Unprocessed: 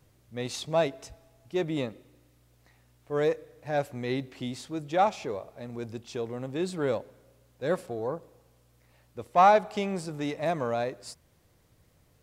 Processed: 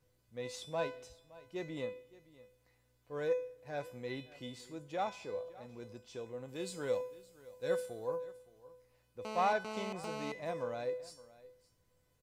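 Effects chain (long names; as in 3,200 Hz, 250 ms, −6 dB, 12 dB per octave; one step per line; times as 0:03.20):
0:06.48–0:08.16: high-shelf EQ 3,700 Hz +10.5 dB
tuned comb filter 500 Hz, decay 0.45 s, mix 90%
single-tap delay 567 ms −20 dB
0:09.25–0:10.32: phone interference −48 dBFS
level +6 dB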